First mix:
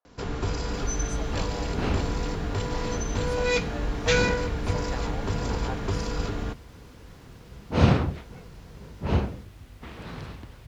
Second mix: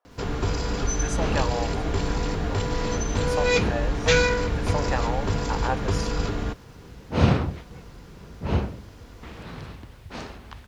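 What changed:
speech +10.5 dB
first sound +3.0 dB
second sound: entry −0.60 s

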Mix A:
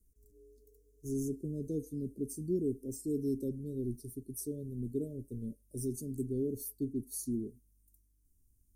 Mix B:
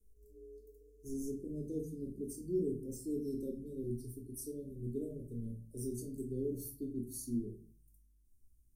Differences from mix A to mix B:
speech −9.5 dB
reverb: on, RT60 0.40 s

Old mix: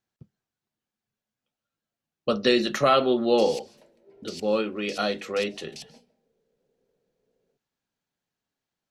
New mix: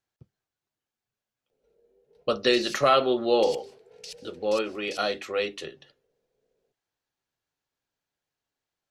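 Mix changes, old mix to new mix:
background: entry −0.85 s
master: add parametric band 200 Hz −9.5 dB 0.79 octaves

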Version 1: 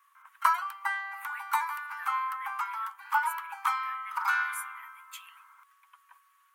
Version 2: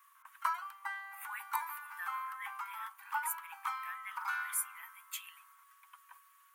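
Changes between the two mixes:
speech: add high-shelf EQ 7,600 Hz +8.5 dB
background −9.5 dB

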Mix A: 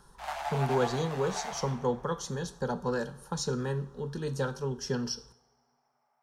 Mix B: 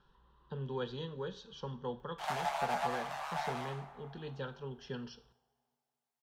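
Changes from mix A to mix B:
speech: add transistor ladder low-pass 3,500 Hz, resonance 60%
background: entry +2.00 s

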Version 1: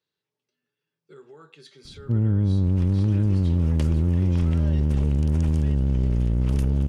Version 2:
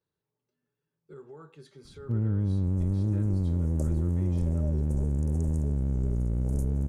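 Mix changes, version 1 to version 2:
speech: remove meter weighting curve D
first sound −6.0 dB
second sound: add Chebyshev band-stop filter 670–7,000 Hz, order 3

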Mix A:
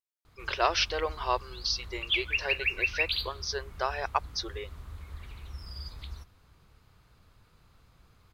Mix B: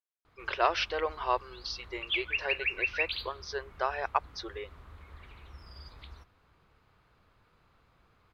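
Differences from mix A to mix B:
background: add low-shelf EQ 130 Hz −4 dB
master: add bass and treble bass −5 dB, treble −13 dB

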